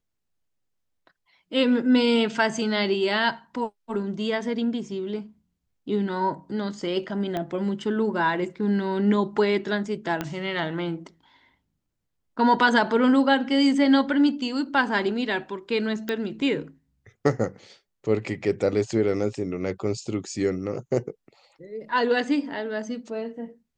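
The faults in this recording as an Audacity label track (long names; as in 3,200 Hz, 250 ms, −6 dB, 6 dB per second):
7.370000	7.370000	click −16 dBFS
10.210000	10.210000	click −13 dBFS
16.090000	16.090000	click −14 dBFS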